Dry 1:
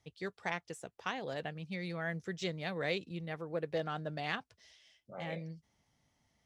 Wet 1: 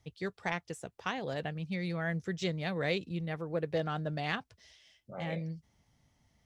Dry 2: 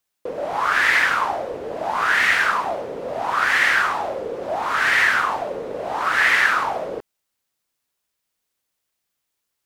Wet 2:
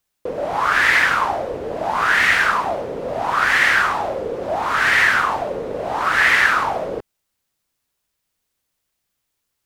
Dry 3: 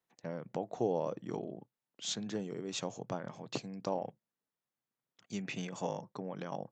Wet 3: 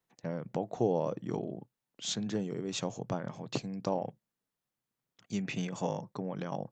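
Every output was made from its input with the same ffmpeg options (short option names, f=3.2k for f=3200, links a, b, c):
-af "lowshelf=f=160:g=8.5,volume=2dB"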